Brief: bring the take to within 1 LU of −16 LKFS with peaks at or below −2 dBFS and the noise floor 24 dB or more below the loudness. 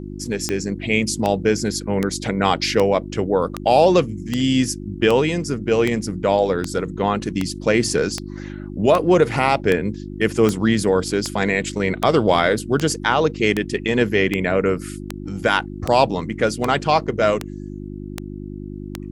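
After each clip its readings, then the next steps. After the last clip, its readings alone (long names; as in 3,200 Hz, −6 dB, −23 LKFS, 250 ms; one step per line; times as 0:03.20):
number of clicks 25; mains hum 50 Hz; hum harmonics up to 350 Hz; level of the hum −29 dBFS; integrated loudness −19.5 LKFS; sample peak −1.5 dBFS; target loudness −16.0 LKFS
→ click removal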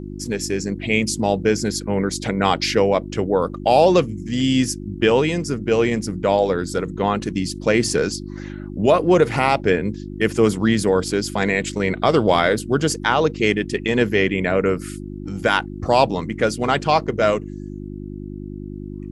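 number of clicks 0; mains hum 50 Hz; hum harmonics up to 350 Hz; level of the hum −29 dBFS
→ hum removal 50 Hz, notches 7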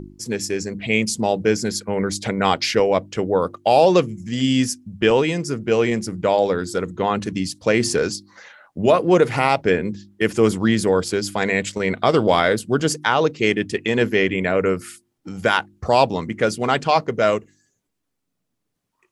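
mains hum none found; integrated loudness −20.0 LKFS; sample peak −1.5 dBFS; target loudness −16.0 LKFS
→ level +4 dB
brickwall limiter −2 dBFS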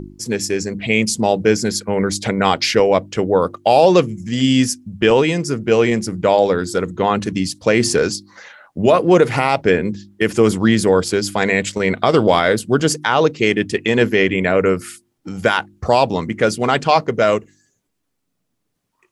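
integrated loudness −16.5 LKFS; sample peak −2.0 dBFS; background noise floor −72 dBFS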